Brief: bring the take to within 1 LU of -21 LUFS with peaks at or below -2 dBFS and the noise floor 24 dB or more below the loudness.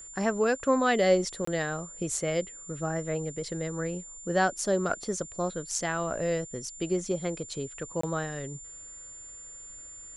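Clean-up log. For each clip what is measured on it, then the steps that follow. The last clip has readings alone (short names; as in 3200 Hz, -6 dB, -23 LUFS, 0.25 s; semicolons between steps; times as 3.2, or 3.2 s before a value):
dropouts 2; longest dropout 24 ms; steady tone 7200 Hz; tone level -43 dBFS; loudness -30.0 LUFS; peak -12.0 dBFS; loudness target -21.0 LUFS
-> interpolate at 1.45/8.01, 24 ms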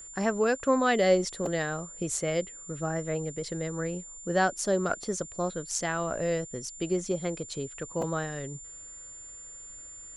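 dropouts 0; steady tone 7200 Hz; tone level -43 dBFS
-> notch 7200 Hz, Q 30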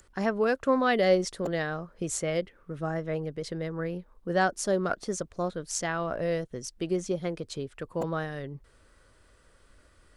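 steady tone none; loudness -30.0 LUFS; peak -12.0 dBFS; loudness target -21.0 LUFS
-> gain +9 dB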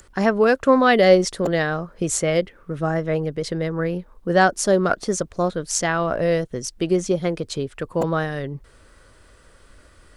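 loudness -21.0 LUFS; peak -3.0 dBFS; noise floor -52 dBFS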